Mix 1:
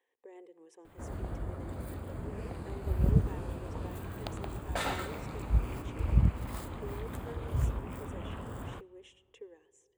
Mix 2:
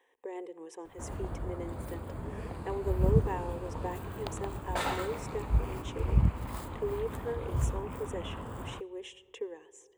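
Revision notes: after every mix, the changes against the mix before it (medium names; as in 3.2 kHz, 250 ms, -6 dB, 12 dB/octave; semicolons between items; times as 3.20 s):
speech +10.5 dB; master: add peaking EQ 960 Hz +4.5 dB 0.53 oct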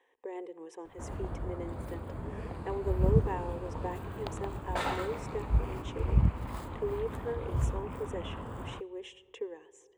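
master: add treble shelf 6.5 kHz -8.5 dB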